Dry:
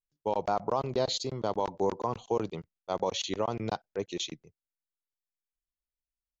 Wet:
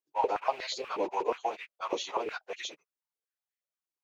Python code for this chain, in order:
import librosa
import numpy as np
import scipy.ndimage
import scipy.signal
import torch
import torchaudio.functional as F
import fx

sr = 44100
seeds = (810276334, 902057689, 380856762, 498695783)

y = fx.rattle_buzz(x, sr, strikes_db=-42.0, level_db=-32.0)
y = fx.stretch_vocoder_free(y, sr, factor=0.63)
y = fx.filter_held_highpass(y, sr, hz=8.3, low_hz=340.0, high_hz=1900.0)